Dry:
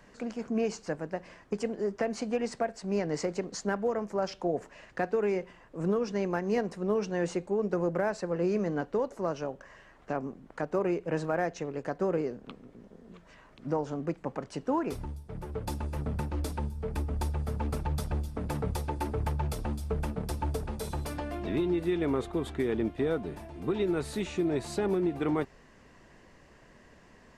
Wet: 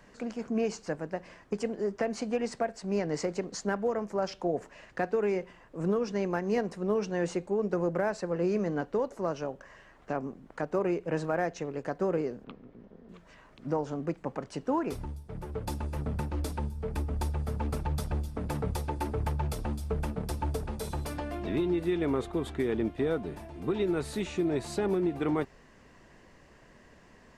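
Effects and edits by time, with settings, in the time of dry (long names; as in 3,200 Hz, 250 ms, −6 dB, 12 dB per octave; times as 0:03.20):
0:12.44–0:13.09: high-frequency loss of the air 190 metres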